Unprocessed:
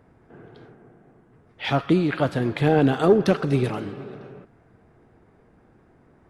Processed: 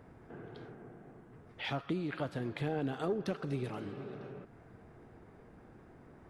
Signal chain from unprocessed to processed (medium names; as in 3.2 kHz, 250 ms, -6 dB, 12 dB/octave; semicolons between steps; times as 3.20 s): compression 2:1, threshold -46 dBFS, peak gain reduction 18.5 dB